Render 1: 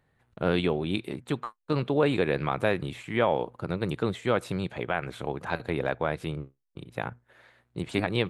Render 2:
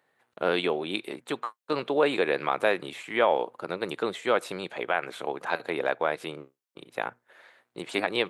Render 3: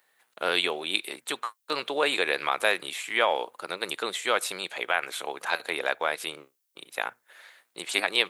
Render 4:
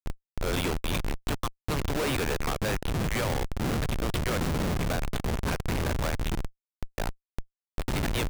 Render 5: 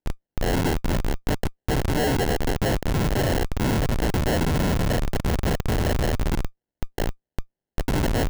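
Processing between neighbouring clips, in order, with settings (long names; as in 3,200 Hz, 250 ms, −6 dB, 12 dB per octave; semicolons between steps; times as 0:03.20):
high-pass filter 400 Hz 12 dB per octave; level +3 dB
spectral tilt +4 dB per octave
wind on the microphone 200 Hz −30 dBFS; comparator with hysteresis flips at −27 dBFS
sample-rate reduction 1,200 Hz, jitter 0%; level +6 dB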